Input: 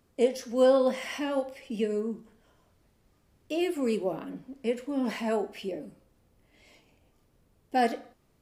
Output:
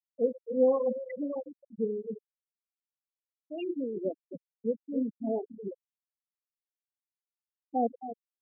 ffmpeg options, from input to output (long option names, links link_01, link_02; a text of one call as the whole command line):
ffmpeg -i in.wav -filter_complex "[0:a]acrossover=split=680[link_01][link_02];[link_01]aeval=exprs='val(0)*(1-0.7/2+0.7/2*cos(2*PI*3.2*n/s))':channel_layout=same[link_03];[link_02]aeval=exprs='val(0)*(1-0.7/2-0.7/2*cos(2*PI*3.2*n/s))':channel_layout=same[link_04];[link_03][link_04]amix=inputs=2:normalize=0,aeval=exprs='val(0)*gte(abs(val(0)),0.00251)':channel_layout=same,aecho=1:1:263|526|789:0.316|0.098|0.0304,afftfilt=real='re*gte(hypot(re,im),0.1)':imag='im*gte(hypot(re,im),0.1)':win_size=1024:overlap=0.75" out.wav